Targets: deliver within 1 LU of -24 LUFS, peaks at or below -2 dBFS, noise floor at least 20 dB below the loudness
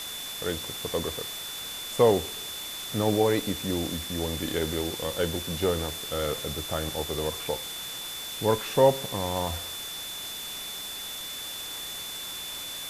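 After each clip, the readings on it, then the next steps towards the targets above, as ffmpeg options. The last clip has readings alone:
steady tone 3.5 kHz; tone level -37 dBFS; noise floor -37 dBFS; noise floor target -49 dBFS; loudness -29.0 LUFS; peak level -8.0 dBFS; loudness target -24.0 LUFS
-> -af "bandreject=f=3500:w=30"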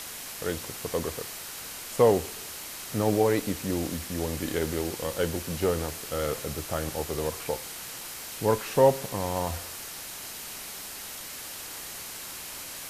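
steady tone not found; noise floor -40 dBFS; noise floor target -50 dBFS
-> -af "afftdn=nr=10:nf=-40"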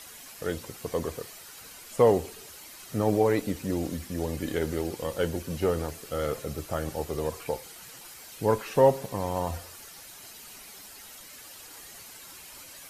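noise floor -47 dBFS; noise floor target -49 dBFS
-> -af "afftdn=nr=6:nf=-47"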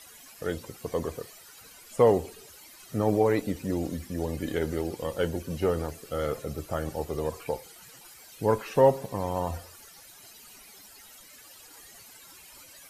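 noise floor -51 dBFS; loudness -29.0 LUFS; peak level -8.0 dBFS; loudness target -24.0 LUFS
-> -af "volume=1.78"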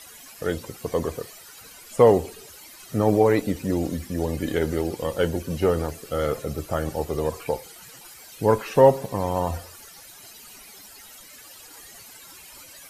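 loudness -24.0 LUFS; peak level -3.0 dBFS; noise floor -46 dBFS

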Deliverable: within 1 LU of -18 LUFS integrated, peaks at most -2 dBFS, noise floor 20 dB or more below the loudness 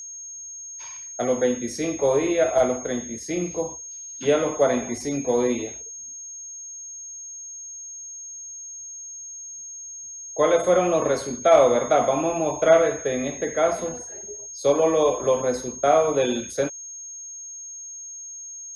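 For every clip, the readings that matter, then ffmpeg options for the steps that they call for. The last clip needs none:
steady tone 6.5 kHz; tone level -35 dBFS; loudness -22.5 LUFS; peak level -4.0 dBFS; loudness target -18.0 LUFS
-> -af "bandreject=f=6500:w=30"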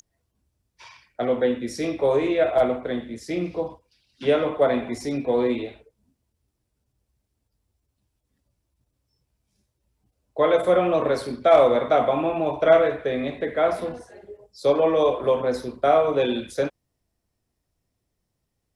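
steady tone not found; loudness -22.5 LUFS; peak level -4.5 dBFS; loudness target -18.0 LUFS
-> -af "volume=1.68,alimiter=limit=0.794:level=0:latency=1"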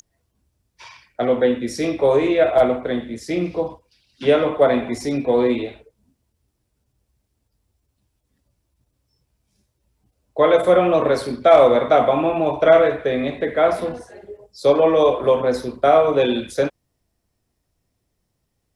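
loudness -18.0 LUFS; peak level -2.0 dBFS; noise floor -74 dBFS

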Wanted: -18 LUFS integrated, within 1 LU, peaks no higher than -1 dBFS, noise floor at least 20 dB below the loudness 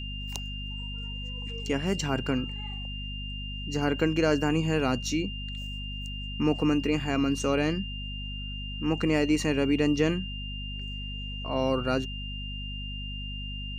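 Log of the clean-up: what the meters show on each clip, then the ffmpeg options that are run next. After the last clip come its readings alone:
hum 50 Hz; highest harmonic 250 Hz; hum level -35 dBFS; steady tone 2.8 kHz; tone level -38 dBFS; loudness -29.5 LUFS; peak level -11.5 dBFS; loudness target -18.0 LUFS
-> -af "bandreject=f=50:t=h:w=6,bandreject=f=100:t=h:w=6,bandreject=f=150:t=h:w=6,bandreject=f=200:t=h:w=6,bandreject=f=250:t=h:w=6"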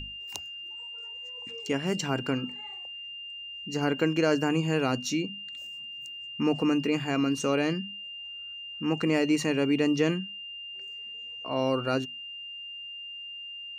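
hum not found; steady tone 2.8 kHz; tone level -38 dBFS
-> -af "bandreject=f=2800:w=30"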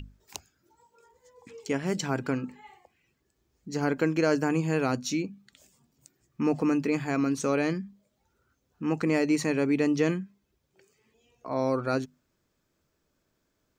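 steady tone not found; loudness -28.0 LUFS; peak level -11.5 dBFS; loudness target -18.0 LUFS
-> -af "volume=3.16"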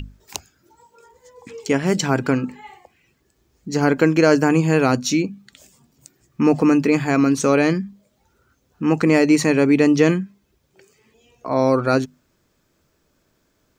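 loudness -18.0 LUFS; peak level -1.5 dBFS; noise floor -66 dBFS

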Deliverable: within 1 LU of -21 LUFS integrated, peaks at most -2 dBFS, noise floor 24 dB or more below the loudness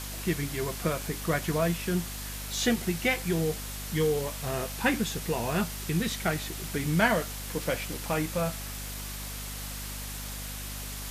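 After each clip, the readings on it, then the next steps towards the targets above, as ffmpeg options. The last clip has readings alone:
hum 50 Hz; highest harmonic 250 Hz; hum level -38 dBFS; noise floor -38 dBFS; noise floor target -55 dBFS; loudness -30.5 LUFS; peak level -8.5 dBFS; loudness target -21.0 LUFS
-> -af "bandreject=f=50:t=h:w=4,bandreject=f=100:t=h:w=4,bandreject=f=150:t=h:w=4,bandreject=f=200:t=h:w=4,bandreject=f=250:t=h:w=4"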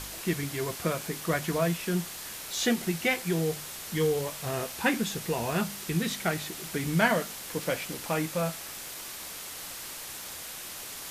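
hum not found; noise floor -41 dBFS; noise floor target -55 dBFS
-> -af "afftdn=nr=14:nf=-41"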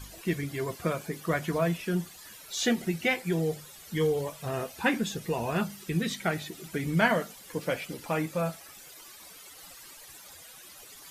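noise floor -50 dBFS; noise floor target -55 dBFS
-> -af "afftdn=nr=6:nf=-50"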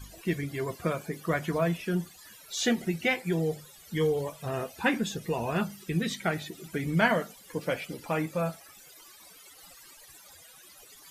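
noise floor -53 dBFS; noise floor target -55 dBFS
-> -af "afftdn=nr=6:nf=-53"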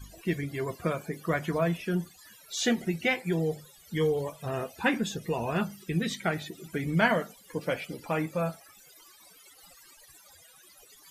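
noise floor -56 dBFS; loudness -30.5 LUFS; peak level -8.5 dBFS; loudness target -21.0 LUFS
-> -af "volume=2.99,alimiter=limit=0.794:level=0:latency=1"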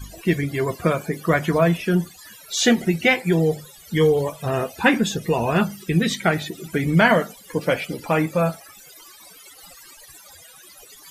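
loudness -21.0 LUFS; peak level -2.0 dBFS; noise floor -47 dBFS

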